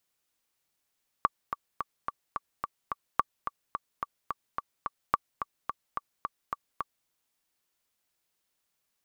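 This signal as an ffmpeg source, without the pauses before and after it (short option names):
-f lavfi -i "aevalsrc='pow(10,(-9-9*gte(mod(t,7*60/216),60/216))/20)*sin(2*PI*1150*mod(t,60/216))*exp(-6.91*mod(t,60/216)/0.03)':d=5.83:s=44100"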